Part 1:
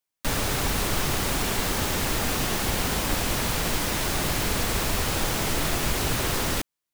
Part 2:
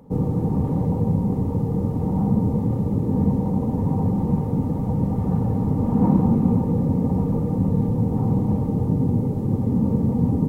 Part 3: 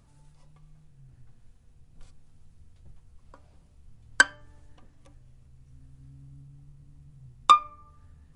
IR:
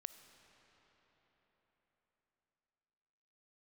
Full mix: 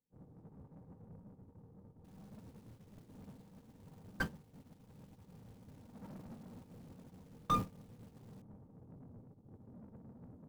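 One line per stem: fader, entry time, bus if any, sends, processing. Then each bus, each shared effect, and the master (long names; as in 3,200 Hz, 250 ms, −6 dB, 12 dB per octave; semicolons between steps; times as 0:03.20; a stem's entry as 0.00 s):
−16.0 dB, 1.80 s, bus A, no send, no processing
−5.5 dB, 0.00 s, bus A, no send, no processing
−9.5 dB, 0.00 s, no bus, no send, slew-rate limiting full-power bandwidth 140 Hz
bus A: 0.0 dB, soft clipping −27.5 dBFS, distortion −9 dB; brickwall limiter −32.5 dBFS, peak gain reduction 5 dB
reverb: not used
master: noise gate −33 dBFS, range −42 dB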